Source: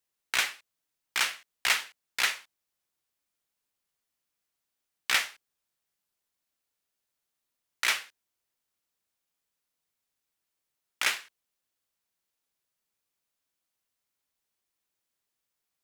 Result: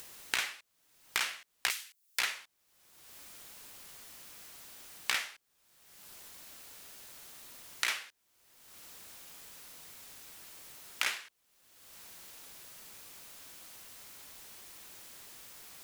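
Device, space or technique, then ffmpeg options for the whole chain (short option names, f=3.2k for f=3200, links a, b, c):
upward and downward compression: -filter_complex "[0:a]asettb=1/sr,asplit=3[a][b][c];[a]atrim=end=1.704[d];[b]atrim=start=1.7:end=2.19,asetpts=PTS-STARTPTS,afade=t=in:d=0.004:c=qsin,afade=t=out:st=0.486:d=0.004:c=qsin,aderivative[e];[c]atrim=start=2.186[f];[d][e]acrossfade=d=0.004:c1=hsin:c2=qsin[g];[g][f]acrossfade=d=0.004:c1=qsin:c2=hsin,acompressor=mode=upward:threshold=-37dB:ratio=2.5,acompressor=threshold=-37dB:ratio=6,volume=7dB"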